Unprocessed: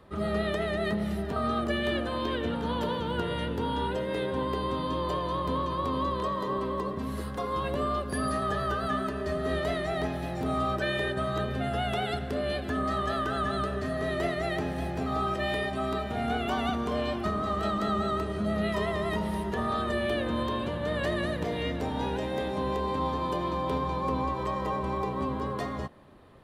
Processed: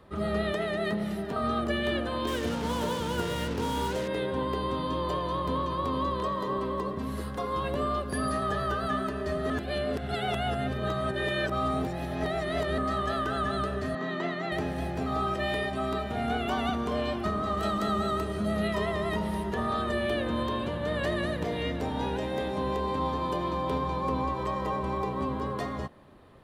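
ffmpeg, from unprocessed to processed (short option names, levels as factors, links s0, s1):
-filter_complex "[0:a]asettb=1/sr,asplit=3[s0][s1][s2];[s0]atrim=end=0.524[s3];[s1]atrim=start=0.52:end=1.42,asetpts=PTS-STARTPTS,afade=t=in:d=0.004:c=qsin,afade=t=out:st=0.896:d=0.004:c=qsin,equalizer=f=63:t=o:w=0.91:g=-13[s4];[s2]atrim=start=1.416[s5];[s3][s4]acrossfade=d=0.004:c1=hsin:c2=qsin[s6];[s6][s5]acrossfade=d=0.004:c1=qsin:c2=hsin,asettb=1/sr,asplit=3[s7][s8][s9];[s7]atrim=end=2.274[s10];[s8]atrim=start=2.27:end=4.08,asetpts=PTS-STARTPTS,afade=t=in:d=0.004:c=qsin,afade=t=out:st=1.806:d=0.004:c=qsin,acrusher=bits=5:mix=0:aa=0.5[s11];[s9]atrim=start=4.076[s12];[s10][s11]acrossfade=d=0.004:c1=hsin:c2=qsin[s13];[s13][s12]acrossfade=d=0.004:c1=qsin:c2=hsin,asettb=1/sr,asplit=3[s14][s15][s16];[s14]atrim=end=13.954[s17];[s15]atrim=start=13.95:end=14.52,asetpts=PTS-STARTPTS,afade=t=in:d=0.004:c=qsin,afade=t=out:st=0.566:d=0.004:c=qsin,highpass=f=180:w=0.5412,highpass=f=180:w=1.3066,equalizer=f=190:t=q:w=4:g=6,equalizer=f=440:t=q:w=4:g=-5,equalizer=f=630:t=q:w=4:g=-6,equalizer=f=980:t=q:w=4:g=6,equalizer=f=2500:t=q:w=4:g=-3,equalizer=f=5200:t=q:w=4:g=-9,lowpass=f=6200:w=0.5412,lowpass=f=6200:w=1.3066[s18];[s16]atrim=start=14.516[s19];[s17][s18]acrossfade=d=0.004:c1=hsin:c2=qsin[s20];[s20][s19]acrossfade=d=0.004:c1=qsin:c2=hsin,asettb=1/sr,asplit=3[s21][s22][s23];[s21]atrim=end=17.574[s24];[s22]atrim=start=17.57:end=18.68,asetpts=PTS-STARTPTS,afade=t=in:d=0.004:c=qsin,afade=t=out:st=1.106:d=0.004:c=qsin,highshelf=f=7300:g=9[s25];[s23]atrim=start=18.676[s26];[s24][s25]acrossfade=d=0.004:c1=hsin:c2=qsin[s27];[s27][s26]acrossfade=d=0.004:c1=qsin:c2=hsin,asplit=3[s28][s29][s30];[s28]atrim=end=9.502[s31];[s29]atrim=start=9.498:end=12.782,asetpts=PTS-STARTPTS,areverse[s32];[s30]atrim=start=12.778[s33];[s31][s32]acrossfade=d=0.004:c1=hsin:c2=hsin[s34];[s34][s33]acrossfade=d=0.004:c1=hsin:c2=hsin"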